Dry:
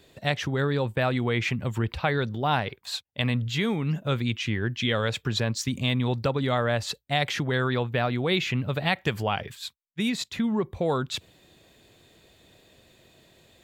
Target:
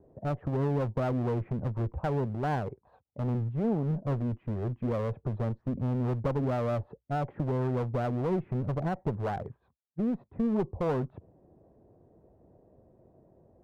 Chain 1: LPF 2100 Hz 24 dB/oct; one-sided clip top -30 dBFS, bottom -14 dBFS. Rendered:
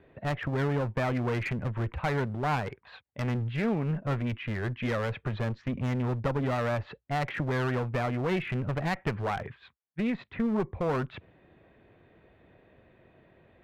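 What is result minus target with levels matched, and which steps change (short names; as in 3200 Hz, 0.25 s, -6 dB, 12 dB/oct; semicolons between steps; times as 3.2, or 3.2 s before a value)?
2000 Hz band +10.5 dB
change: LPF 830 Hz 24 dB/oct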